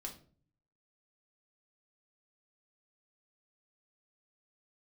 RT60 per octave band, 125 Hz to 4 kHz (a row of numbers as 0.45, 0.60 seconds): 0.90, 0.70, 0.50, 0.40, 0.35, 0.30 seconds